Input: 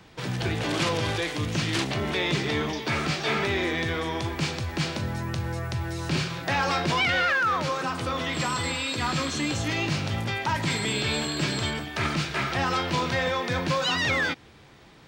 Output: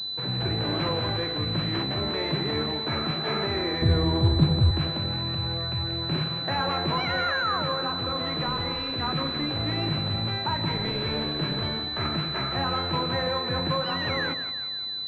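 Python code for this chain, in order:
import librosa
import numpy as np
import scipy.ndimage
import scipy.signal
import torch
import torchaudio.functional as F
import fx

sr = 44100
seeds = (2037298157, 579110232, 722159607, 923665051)

y = fx.rattle_buzz(x, sr, strikes_db=-28.0, level_db=-28.0)
y = fx.tilt_eq(y, sr, slope=-4.0, at=(3.82, 4.71))
y = fx.echo_split(y, sr, split_hz=720.0, low_ms=89, high_ms=175, feedback_pct=52, wet_db=-10)
y = fx.pwm(y, sr, carrier_hz=4000.0)
y = F.gain(torch.from_numpy(y), -1.5).numpy()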